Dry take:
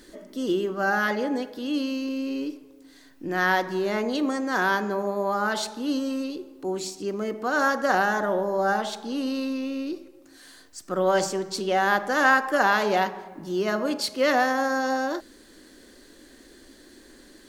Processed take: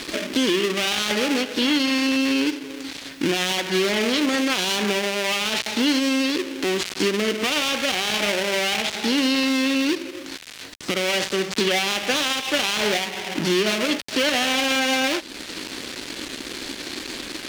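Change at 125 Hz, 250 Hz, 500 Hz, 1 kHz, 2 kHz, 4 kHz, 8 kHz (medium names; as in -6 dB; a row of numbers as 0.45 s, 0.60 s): +3.5 dB, +5.0 dB, +1.0 dB, -4.0 dB, +2.0 dB, +14.0 dB, +10.5 dB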